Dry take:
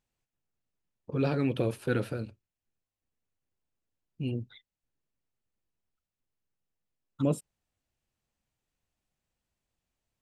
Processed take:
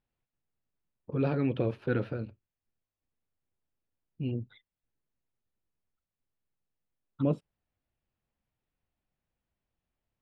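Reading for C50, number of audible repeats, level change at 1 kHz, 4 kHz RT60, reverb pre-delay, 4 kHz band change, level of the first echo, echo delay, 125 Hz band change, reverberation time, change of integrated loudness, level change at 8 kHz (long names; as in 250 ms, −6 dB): no reverb audible, no echo audible, −1.5 dB, no reverb audible, no reverb audible, −6.5 dB, no echo audible, no echo audible, 0.0 dB, no reverb audible, −0.5 dB, below −25 dB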